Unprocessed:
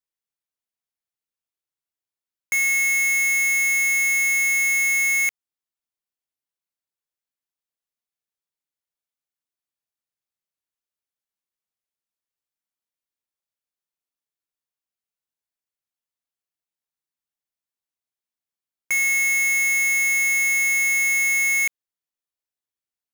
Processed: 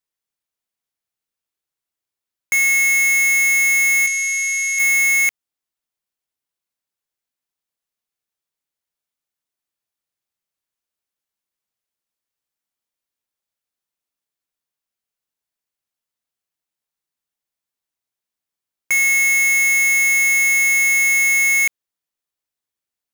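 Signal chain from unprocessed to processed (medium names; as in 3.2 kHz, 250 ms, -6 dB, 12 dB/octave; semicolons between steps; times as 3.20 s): 4.07–4.79 s: frequency weighting ITU-R 468; compressor with a negative ratio -19 dBFS, ratio -1; trim +3.5 dB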